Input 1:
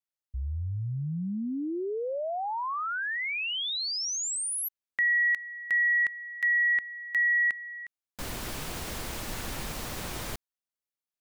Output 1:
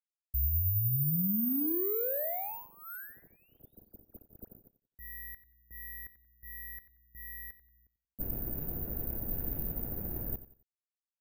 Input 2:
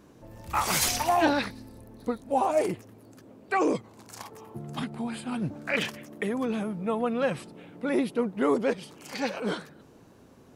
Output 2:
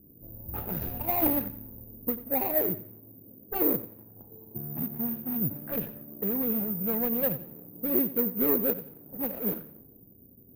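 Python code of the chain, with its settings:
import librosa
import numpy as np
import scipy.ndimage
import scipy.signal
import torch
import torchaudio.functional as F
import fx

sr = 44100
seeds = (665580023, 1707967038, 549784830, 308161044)

y = scipy.ndimage.median_filter(x, 41, mode='constant')
y = fx.high_shelf(y, sr, hz=5300.0, db=-9.0)
y = fx.env_lowpass(y, sr, base_hz=320.0, full_db=-29.5)
y = fx.echo_feedback(y, sr, ms=90, feedback_pct=32, wet_db=-15.0)
y = (np.kron(scipy.signal.resample_poly(y, 1, 3), np.eye(3)[0]) * 3)[:len(y)]
y = fx.low_shelf(y, sr, hz=400.0, db=5.0)
y = y * 10.0 ** (-4.5 / 20.0)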